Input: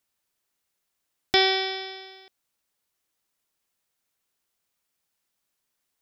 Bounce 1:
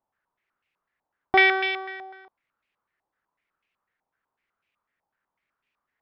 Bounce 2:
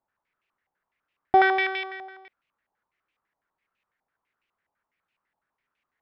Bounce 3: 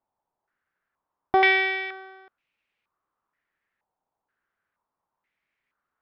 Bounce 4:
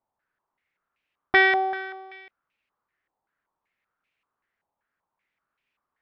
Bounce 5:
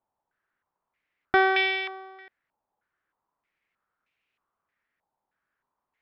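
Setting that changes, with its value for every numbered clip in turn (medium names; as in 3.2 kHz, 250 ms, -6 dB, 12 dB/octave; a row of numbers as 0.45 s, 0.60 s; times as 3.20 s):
step-sequenced low-pass, rate: 8 Hz, 12 Hz, 2.1 Hz, 5.2 Hz, 3.2 Hz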